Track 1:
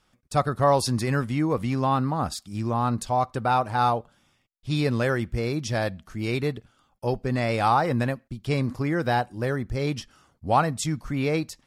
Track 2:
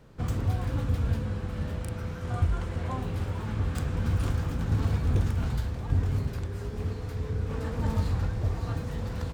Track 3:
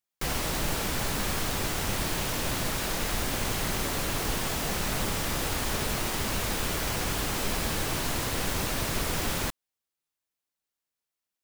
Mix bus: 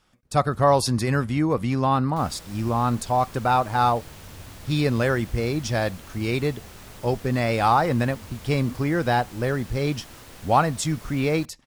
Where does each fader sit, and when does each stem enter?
+2.0, -18.0, -15.0 dB; 0.00, 0.25, 1.95 s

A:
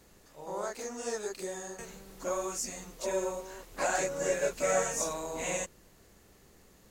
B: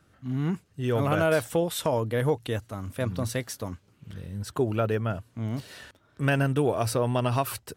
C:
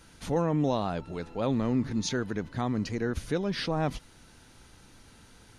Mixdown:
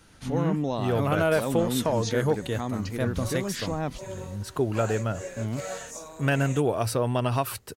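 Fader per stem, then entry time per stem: -7.5, 0.0, -1.5 dB; 0.95, 0.00, 0.00 s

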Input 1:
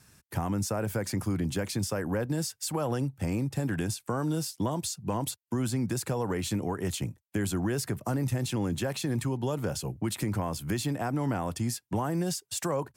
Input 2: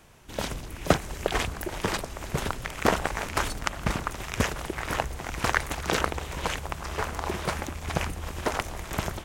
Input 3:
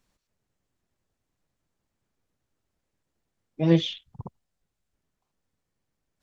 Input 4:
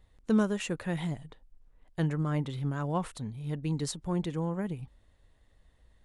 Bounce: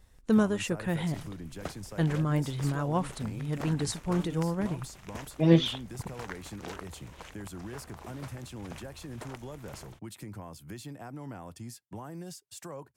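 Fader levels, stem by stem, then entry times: -12.5, -17.5, -0.5, +2.0 dB; 0.00, 0.75, 1.80, 0.00 s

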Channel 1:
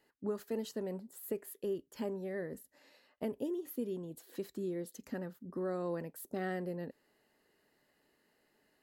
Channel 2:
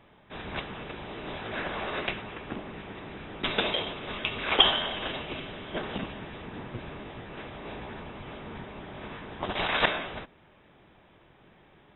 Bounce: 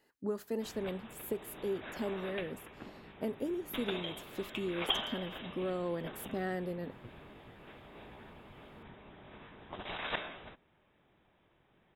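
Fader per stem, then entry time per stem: +1.0, -12.0 dB; 0.00, 0.30 s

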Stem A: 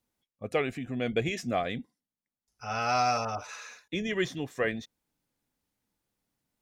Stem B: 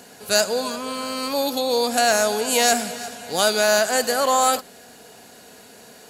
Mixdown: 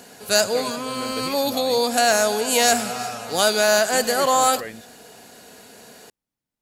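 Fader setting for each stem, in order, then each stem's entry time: -5.5, +0.5 dB; 0.00, 0.00 s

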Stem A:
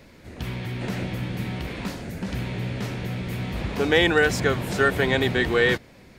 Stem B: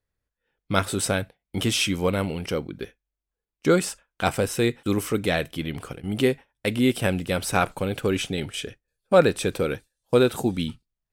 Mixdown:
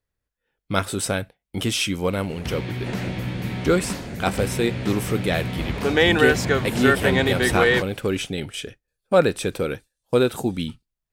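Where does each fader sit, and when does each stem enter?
+1.5, 0.0 dB; 2.05, 0.00 s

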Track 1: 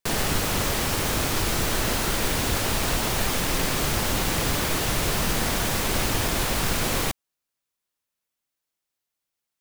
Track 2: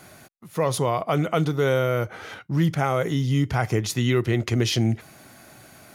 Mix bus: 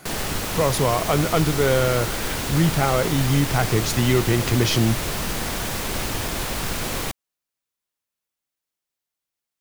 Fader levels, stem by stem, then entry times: -2.0, +2.0 dB; 0.00, 0.00 s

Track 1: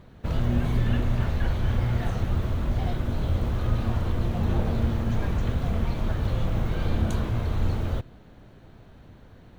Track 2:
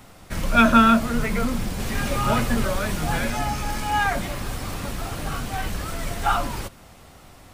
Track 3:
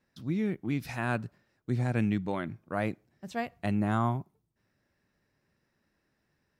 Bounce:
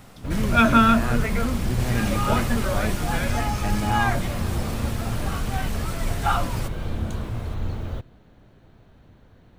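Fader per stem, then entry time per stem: -3.0, -1.5, +0.5 dB; 0.00, 0.00, 0.00 s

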